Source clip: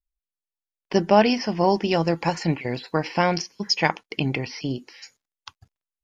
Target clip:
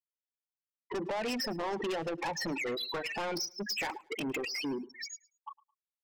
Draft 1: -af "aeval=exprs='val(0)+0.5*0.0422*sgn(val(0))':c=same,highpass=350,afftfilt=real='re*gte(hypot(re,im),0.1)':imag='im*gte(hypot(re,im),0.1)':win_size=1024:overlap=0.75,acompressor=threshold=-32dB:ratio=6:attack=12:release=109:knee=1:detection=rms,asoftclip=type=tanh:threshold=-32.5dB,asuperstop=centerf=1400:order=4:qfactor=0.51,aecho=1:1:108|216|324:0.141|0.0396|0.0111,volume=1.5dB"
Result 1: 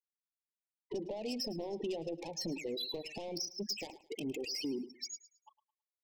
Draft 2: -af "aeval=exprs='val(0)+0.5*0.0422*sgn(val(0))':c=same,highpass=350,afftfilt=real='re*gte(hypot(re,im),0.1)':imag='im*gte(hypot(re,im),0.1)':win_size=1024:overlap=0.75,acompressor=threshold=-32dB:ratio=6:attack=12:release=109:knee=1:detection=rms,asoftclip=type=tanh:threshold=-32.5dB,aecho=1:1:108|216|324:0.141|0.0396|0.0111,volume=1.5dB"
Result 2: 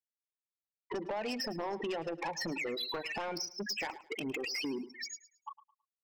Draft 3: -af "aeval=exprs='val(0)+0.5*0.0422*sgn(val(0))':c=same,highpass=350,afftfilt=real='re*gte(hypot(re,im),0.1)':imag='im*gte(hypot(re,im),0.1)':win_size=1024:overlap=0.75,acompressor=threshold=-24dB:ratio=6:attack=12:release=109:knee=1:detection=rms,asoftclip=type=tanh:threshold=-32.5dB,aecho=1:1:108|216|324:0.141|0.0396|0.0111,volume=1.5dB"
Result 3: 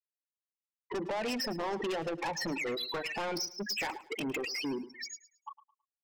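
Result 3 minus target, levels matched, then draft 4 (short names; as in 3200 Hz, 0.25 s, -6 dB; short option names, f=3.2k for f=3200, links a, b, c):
echo-to-direct +6.5 dB
-af "aeval=exprs='val(0)+0.5*0.0422*sgn(val(0))':c=same,highpass=350,afftfilt=real='re*gte(hypot(re,im),0.1)':imag='im*gte(hypot(re,im),0.1)':win_size=1024:overlap=0.75,acompressor=threshold=-24dB:ratio=6:attack=12:release=109:knee=1:detection=rms,asoftclip=type=tanh:threshold=-32.5dB,aecho=1:1:108|216:0.0668|0.0187,volume=1.5dB"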